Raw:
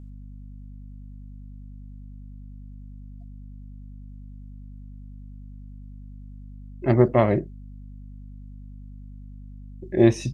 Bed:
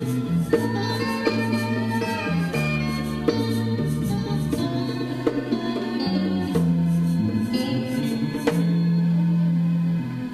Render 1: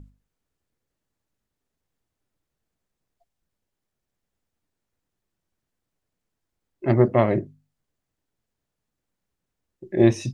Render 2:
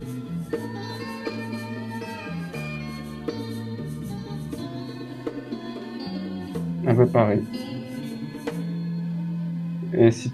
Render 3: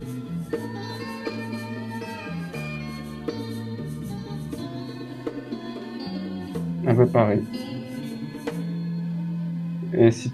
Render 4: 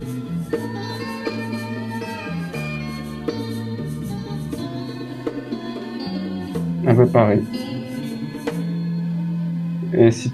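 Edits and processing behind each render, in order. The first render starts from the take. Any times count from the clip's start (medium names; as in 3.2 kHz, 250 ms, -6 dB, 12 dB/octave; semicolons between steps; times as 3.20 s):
hum notches 50/100/150/200/250 Hz
add bed -8.5 dB
no audible change
trim +5 dB; peak limiter -1 dBFS, peak gain reduction 2.5 dB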